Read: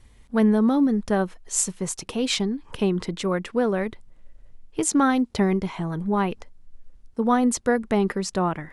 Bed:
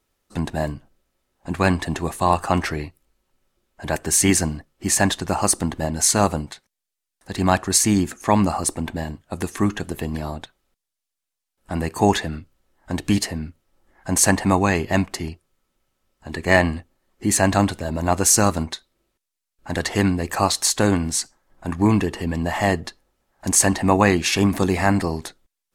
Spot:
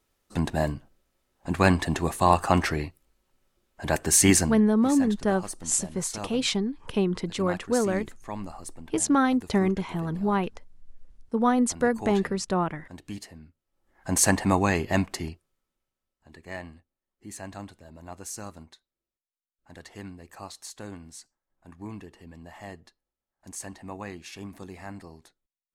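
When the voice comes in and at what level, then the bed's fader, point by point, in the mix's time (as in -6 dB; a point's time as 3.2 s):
4.15 s, -2.0 dB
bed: 4.38 s -1.5 dB
4.97 s -18.5 dB
13.56 s -18.5 dB
14.04 s -4.5 dB
15.23 s -4.5 dB
16.5 s -22 dB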